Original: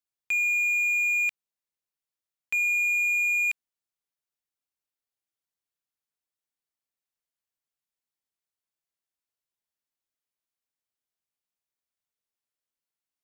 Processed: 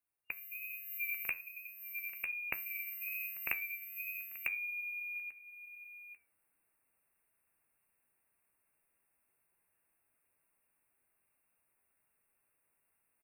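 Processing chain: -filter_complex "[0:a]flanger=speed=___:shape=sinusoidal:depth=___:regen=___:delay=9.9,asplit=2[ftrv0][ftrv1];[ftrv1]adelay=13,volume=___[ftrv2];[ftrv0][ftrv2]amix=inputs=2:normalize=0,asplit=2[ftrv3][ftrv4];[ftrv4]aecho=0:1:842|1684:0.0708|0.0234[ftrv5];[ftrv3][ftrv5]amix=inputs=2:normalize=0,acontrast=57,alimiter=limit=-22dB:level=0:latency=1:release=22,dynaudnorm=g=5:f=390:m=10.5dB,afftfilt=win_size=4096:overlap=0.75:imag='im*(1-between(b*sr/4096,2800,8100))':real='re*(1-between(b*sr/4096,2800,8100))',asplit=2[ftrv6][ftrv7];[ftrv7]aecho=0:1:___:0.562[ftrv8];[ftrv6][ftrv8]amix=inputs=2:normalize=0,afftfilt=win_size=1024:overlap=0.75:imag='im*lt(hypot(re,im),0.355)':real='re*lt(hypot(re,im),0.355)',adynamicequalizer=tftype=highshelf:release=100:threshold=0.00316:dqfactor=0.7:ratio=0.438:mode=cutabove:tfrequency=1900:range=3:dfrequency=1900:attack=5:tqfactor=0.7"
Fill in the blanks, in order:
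1.2, 1.3, 81, -12dB, 949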